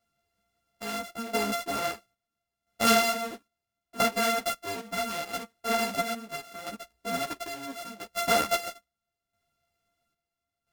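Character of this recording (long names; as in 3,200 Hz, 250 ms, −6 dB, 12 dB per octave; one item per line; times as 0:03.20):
a buzz of ramps at a fixed pitch in blocks of 64 samples
chopped level 0.75 Hz, depth 65%, duty 60%
a shimmering, thickened sound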